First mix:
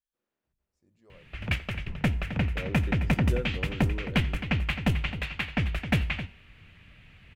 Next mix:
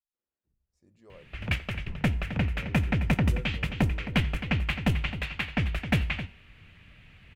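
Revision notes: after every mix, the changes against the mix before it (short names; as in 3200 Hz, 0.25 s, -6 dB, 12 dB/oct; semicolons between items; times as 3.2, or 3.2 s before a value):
first voice +5.0 dB; second voice -10.5 dB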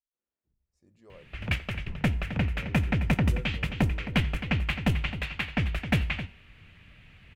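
none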